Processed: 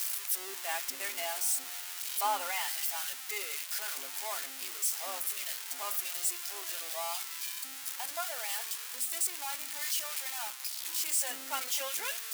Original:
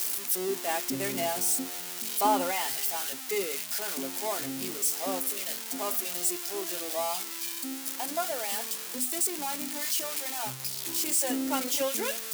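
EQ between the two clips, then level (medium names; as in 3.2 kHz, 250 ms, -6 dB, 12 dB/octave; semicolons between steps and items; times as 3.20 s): high-pass 1.1 kHz 12 dB/octave; peaking EQ 5.5 kHz -2.5 dB 2.1 oct; treble shelf 10 kHz -4 dB; 0.0 dB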